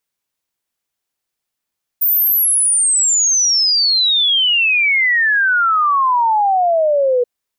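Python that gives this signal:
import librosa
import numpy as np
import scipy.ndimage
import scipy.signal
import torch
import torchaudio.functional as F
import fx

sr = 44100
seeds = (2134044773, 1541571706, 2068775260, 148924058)

y = fx.ess(sr, length_s=5.23, from_hz=15000.0, to_hz=480.0, level_db=-11.0)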